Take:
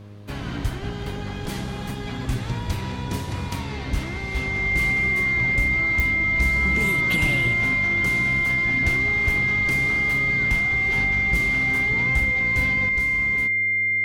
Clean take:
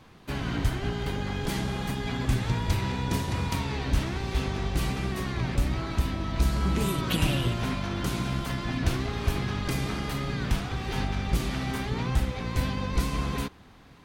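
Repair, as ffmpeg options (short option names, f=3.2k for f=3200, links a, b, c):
-af "adeclick=t=4,bandreject=f=102.6:t=h:w=4,bandreject=f=205.2:t=h:w=4,bandreject=f=307.8:t=h:w=4,bandreject=f=410.4:t=h:w=4,bandreject=f=513:t=h:w=4,bandreject=f=615.6:t=h:w=4,bandreject=f=2.1k:w=30,asetnsamples=n=441:p=0,asendcmd='12.89 volume volume 6.5dB',volume=0dB"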